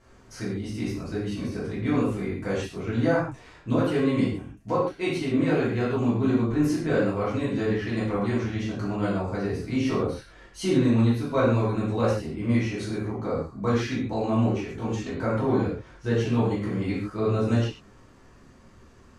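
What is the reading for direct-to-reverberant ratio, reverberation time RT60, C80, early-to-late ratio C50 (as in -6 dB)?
-9.5 dB, not exponential, 5.5 dB, 1.5 dB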